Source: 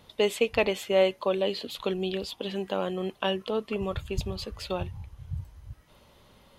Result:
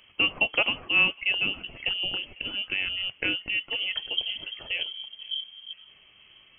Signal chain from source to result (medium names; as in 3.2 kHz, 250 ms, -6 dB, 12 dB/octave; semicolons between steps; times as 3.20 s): frequency inversion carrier 3.2 kHz; thinning echo 500 ms, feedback 60%, high-pass 1.1 kHz, level -23 dB